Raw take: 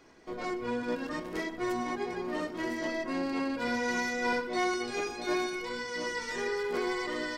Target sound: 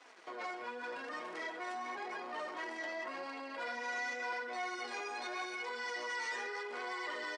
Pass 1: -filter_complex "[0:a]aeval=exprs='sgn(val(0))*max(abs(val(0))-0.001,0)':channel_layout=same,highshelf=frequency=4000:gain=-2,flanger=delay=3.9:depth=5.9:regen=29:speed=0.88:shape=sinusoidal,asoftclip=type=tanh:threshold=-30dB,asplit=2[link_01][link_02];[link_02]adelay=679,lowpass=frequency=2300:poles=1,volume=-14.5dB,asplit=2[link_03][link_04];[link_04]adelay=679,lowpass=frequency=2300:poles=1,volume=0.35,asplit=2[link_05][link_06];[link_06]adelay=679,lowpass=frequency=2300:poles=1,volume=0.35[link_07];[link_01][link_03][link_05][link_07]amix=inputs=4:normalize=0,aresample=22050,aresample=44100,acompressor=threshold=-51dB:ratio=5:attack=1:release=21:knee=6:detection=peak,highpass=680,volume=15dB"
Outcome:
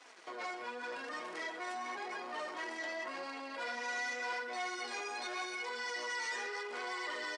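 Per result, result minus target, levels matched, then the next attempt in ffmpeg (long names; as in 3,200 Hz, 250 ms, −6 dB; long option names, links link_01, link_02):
soft clipping: distortion +16 dB; 8,000 Hz band +4.0 dB
-filter_complex "[0:a]aeval=exprs='sgn(val(0))*max(abs(val(0))-0.001,0)':channel_layout=same,highshelf=frequency=4000:gain=-2,flanger=delay=3.9:depth=5.9:regen=29:speed=0.88:shape=sinusoidal,asoftclip=type=tanh:threshold=-20.5dB,asplit=2[link_01][link_02];[link_02]adelay=679,lowpass=frequency=2300:poles=1,volume=-14.5dB,asplit=2[link_03][link_04];[link_04]adelay=679,lowpass=frequency=2300:poles=1,volume=0.35,asplit=2[link_05][link_06];[link_06]adelay=679,lowpass=frequency=2300:poles=1,volume=0.35[link_07];[link_01][link_03][link_05][link_07]amix=inputs=4:normalize=0,aresample=22050,aresample=44100,acompressor=threshold=-51dB:ratio=5:attack=1:release=21:knee=6:detection=peak,highpass=680,volume=15dB"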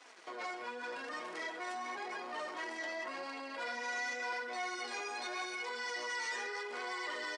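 8,000 Hz band +4.0 dB
-filter_complex "[0:a]aeval=exprs='sgn(val(0))*max(abs(val(0))-0.001,0)':channel_layout=same,highshelf=frequency=4000:gain=-9,flanger=delay=3.9:depth=5.9:regen=29:speed=0.88:shape=sinusoidal,asoftclip=type=tanh:threshold=-20.5dB,asplit=2[link_01][link_02];[link_02]adelay=679,lowpass=frequency=2300:poles=1,volume=-14.5dB,asplit=2[link_03][link_04];[link_04]adelay=679,lowpass=frequency=2300:poles=1,volume=0.35,asplit=2[link_05][link_06];[link_06]adelay=679,lowpass=frequency=2300:poles=1,volume=0.35[link_07];[link_01][link_03][link_05][link_07]amix=inputs=4:normalize=0,aresample=22050,aresample=44100,acompressor=threshold=-51dB:ratio=5:attack=1:release=21:knee=6:detection=peak,highpass=680,volume=15dB"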